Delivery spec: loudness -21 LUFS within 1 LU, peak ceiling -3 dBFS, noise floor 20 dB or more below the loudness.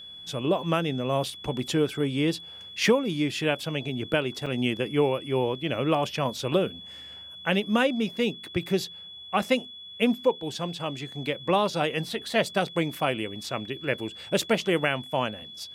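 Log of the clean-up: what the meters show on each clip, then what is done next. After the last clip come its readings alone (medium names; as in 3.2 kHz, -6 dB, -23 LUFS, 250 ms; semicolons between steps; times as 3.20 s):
dropouts 1; longest dropout 5.3 ms; steady tone 3.4 kHz; tone level -41 dBFS; loudness -27.5 LUFS; peak level -10.0 dBFS; loudness target -21.0 LUFS
-> interpolate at 4.46 s, 5.3 ms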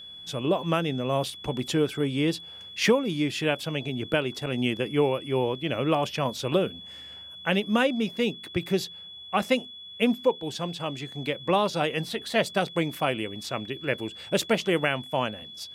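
dropouts 0; steady tone 3.4 kHz; tone level -41 dBFS
-> band-stop 3.4 kHz, Q 30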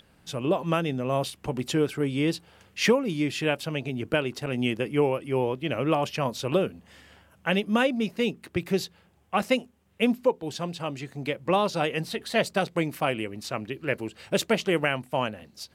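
steady tone not found; loudness -27.5 LUFS; peak level -10.0 dBFS; loudness target -21.0 LUFS
-> trim +6.5 dB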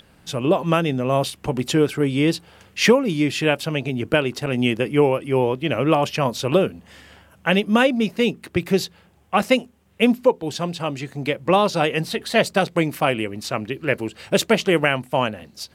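loudness -21.0 LUFS; peak level -3.5 dBFS; noise floor -54 dBFS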